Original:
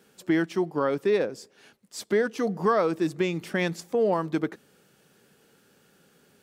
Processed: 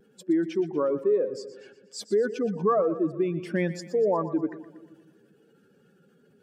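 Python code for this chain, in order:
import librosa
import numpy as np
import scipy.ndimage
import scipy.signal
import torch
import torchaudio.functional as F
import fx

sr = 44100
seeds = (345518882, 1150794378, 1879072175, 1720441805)

y = fx.spec_expand(x, sr, power=1.9)
y = fx.echo_split(y, sr, split_hz=380.0, low_ms=161, high_ms=120, feedback_pct=52, wet_db=-14.0)
y = fx.vibrato(y, sr, rate_hz=0.47, depth_cents=15.0)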